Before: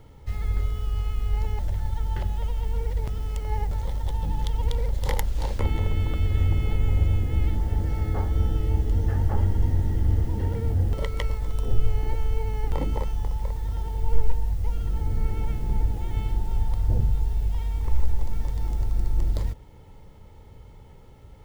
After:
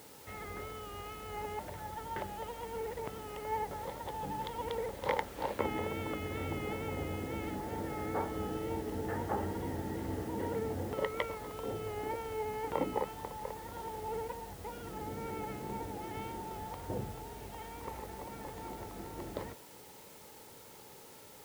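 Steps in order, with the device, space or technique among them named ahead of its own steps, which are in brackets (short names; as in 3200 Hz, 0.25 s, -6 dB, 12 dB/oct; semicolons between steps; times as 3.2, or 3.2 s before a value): wax cylinder (BPF 290–2300 Hz; wow and flutter; white noise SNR 17 dB); gain +1 dB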